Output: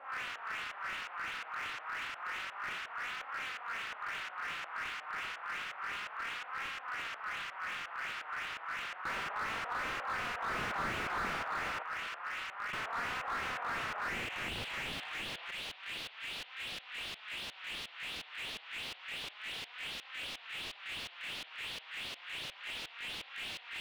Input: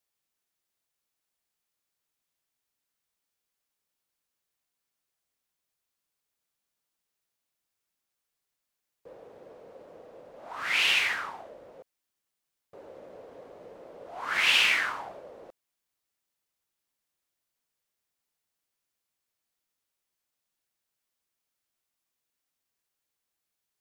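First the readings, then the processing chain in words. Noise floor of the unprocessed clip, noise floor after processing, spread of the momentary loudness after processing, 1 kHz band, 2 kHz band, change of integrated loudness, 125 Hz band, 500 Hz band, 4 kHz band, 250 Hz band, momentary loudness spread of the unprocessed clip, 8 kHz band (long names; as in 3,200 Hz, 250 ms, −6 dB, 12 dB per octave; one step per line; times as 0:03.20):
−85 dBFS, −54 dBFS, 5 LU, +4.0 dB, −3.5 dB, −14.5 dB, can't be measured, −1.0 dB, −6.5 dB, +5.0 dB, 19 LU, −5.5 dB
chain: compressor on every frequency bin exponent 0.2
parametric band 11,000 Hz +9.5 dB 1.1 octaves
flanger 0.3 Hz, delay 3.6 ms, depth 3.1 ms, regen +30%
auto-filter low-pass saw up 2.8 Hz 560–7,300 Hz
on a send: delay with a low-pass on its return 116 ms, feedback 55%, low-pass 1,400 Hz, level −10 dB
on the sum: band-pass filter sweep 1,300 Hz → 3,800 Hz, 0:13.96–0:14.47
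slew-rate limiting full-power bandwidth 24 Hz
level +1 dB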